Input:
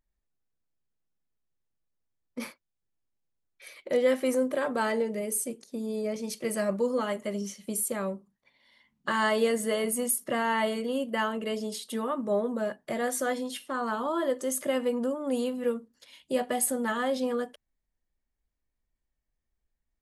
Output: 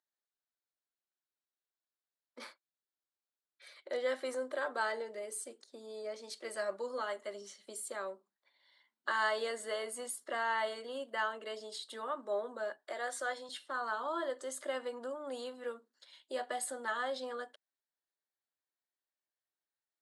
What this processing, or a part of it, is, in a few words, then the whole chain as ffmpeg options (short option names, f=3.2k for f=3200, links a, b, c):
phone speaker on a table: -filter_complex "[0:a]highpass=f=370:w=0.5412,highpass=f=370:w=1.3066,equalizer=f=470:t=q:w=4:g=-6,equalizer=f=1.5k:t=q:w=4:g=5,equalizer=f=2.5k:t=q:w=4:g=-7,equalizer=f=4k:t=q:w=4:g=6,equalizer=f=6.1k:t=q:w=4:g=-6,lowpass=f=8.5k:w=0.5412,lowpass=f=8.5k:w=1.3066,asettb=1/sr,asplit=3[a][b][c];[a]atrim=end=12.774[d];[b]atrim=start=12.77:end=13.49,asetpts=PTS-STARTPTS,afade=t=in:d=0.004:c=qsin,afade=t=out:st=0.716:d=0.004:c=qsin,highpass=310[e];[c]atrim=start=13.486[f];[d][e]acrossfade=d=0.004:c1=hsin:c2=qsin[g];[g][f]acrossfade=d=0.004:c1=qsin:c2=hsin,volume=-6dB"